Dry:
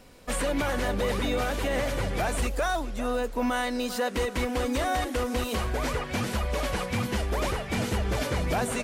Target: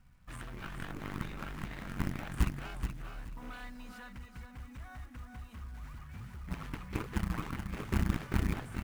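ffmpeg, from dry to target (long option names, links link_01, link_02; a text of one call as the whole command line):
ffmpeg -i in.wav -filter_complex "[0:a]firequalizer=gain_entry='entry(150,0);entry(260,-16);entry(460,-29);entry(770,-15);entry(1300,-8);entry(3800,-20)':delay=0.05:min_phase=1,asplit=3[link_01][link_02][link_03];[link_01]afade=type=out:start_time=3.94:duration=0.02[link_04];[link_02]acompressor=threshold=-41dB:ratio=2.5,afade=type=in:start_time=3.94:duration=0.02,afade=type=out:start_time=6.47:duration=0.02[link_05];[link_03]afade=type=in:start_time=6.47:duration=0.02[link_06];[link_04][link_05][link_06]amix=inputs=3:normalize=0,aeval=exprs='0.237*(cos(1*acos(clip(val(0)/0.237,-1,1)))-cos(1*PI/2))+0.0422*(cos(7*acos(clip(val(0)/0.237,-1,1)))-cos(7*PI/2))':channel_layout=same,acrusher=bits=5:mode=log:mix=0:aa=0.000001,aecho=1:1:427|854|1281:0.422|0.101|0.0243,volume=8dB" out.wav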